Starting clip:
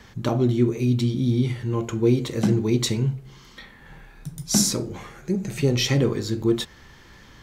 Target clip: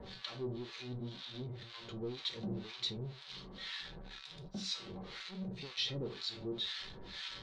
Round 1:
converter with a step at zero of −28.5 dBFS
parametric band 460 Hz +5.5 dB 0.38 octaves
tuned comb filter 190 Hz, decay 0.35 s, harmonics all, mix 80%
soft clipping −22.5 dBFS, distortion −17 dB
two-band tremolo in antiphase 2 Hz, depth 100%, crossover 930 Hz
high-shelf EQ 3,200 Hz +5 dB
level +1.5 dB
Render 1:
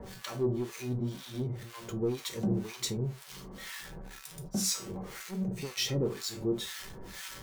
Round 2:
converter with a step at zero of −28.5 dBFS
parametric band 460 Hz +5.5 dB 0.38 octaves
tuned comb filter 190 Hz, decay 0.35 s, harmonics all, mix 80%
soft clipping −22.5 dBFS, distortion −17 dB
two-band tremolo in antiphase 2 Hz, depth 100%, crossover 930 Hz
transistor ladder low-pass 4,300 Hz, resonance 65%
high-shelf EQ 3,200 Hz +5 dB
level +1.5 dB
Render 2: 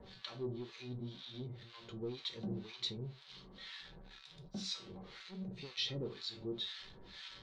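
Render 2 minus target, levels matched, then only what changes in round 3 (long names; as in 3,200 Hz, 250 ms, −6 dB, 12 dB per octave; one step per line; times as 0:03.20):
converter with a step at zero: distortion −6 dB
change: converter with a step at zero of −21.5 dBFS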